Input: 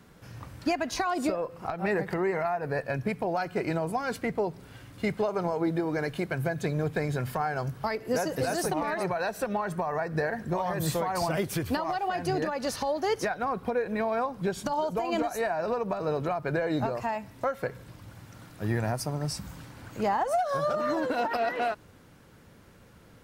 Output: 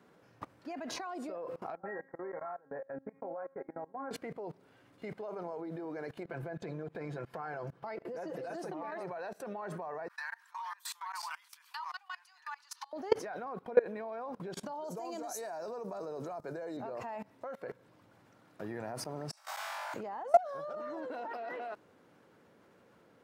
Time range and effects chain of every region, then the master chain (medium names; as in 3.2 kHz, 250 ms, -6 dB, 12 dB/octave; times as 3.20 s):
1.75–4.11 s: steep low-pass 1.9 kHz 48 dB/octave + feedback comb 270 Hz, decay 0.51 s, mix 90%
6.23–8.92 s: treble shelf 6.3 kHz -10.5 dB + comb 5.9 ms, depth 50% + compression 3:1, threshold -36 dBFS
10.08–12.93 s: Chebyshev high-pass 930 Hz, order 6 + peaking EQ 1.4 kHz -7 dB 2.5 oct
14.84–16.77 s: resonant high shelf 4.1 kHz +14 dB, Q 1.5 + three bands expanded up and down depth 40%
19.31–19.94 s: steep high-pass 600 Hz 96 dB/octave + compressor with a negative ratio -44 dBFS, ratio -0.5 + flutter echo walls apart 3.6 m, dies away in 1.2 s
whole clip: high-pass 390 Hz 12 dB/octave; tilt EQ -3 dB/octave; level held to a coarse grid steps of 23 dB; trim +5.5 dB